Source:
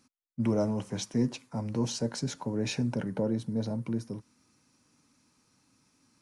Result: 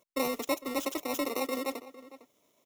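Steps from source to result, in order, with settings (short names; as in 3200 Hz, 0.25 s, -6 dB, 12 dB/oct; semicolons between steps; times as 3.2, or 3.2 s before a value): FFT order left unsorted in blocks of 64 samples; speed mistake 33 rpm record played at 78 rpm; outdoor echo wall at 78 m, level -16 dB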